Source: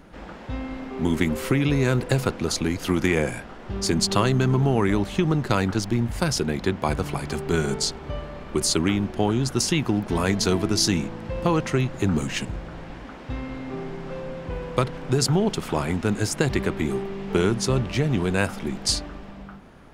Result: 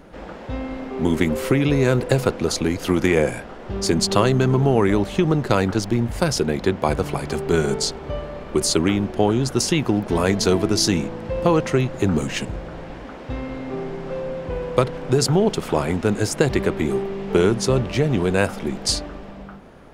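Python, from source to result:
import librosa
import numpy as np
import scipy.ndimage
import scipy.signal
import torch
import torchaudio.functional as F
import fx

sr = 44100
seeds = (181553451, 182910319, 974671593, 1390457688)

y = fx.peak_eq(x, sr, hz=510.0, db=5.5, octaves=1.1)
y = y * 10.0 ** (1.5 / 20.0)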